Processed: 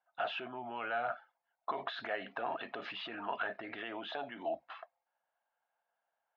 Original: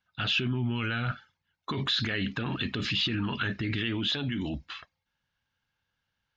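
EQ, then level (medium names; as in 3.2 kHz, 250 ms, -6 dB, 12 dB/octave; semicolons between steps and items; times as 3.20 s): ladder band-pass 730 Hz, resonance 75%; +11.0 dB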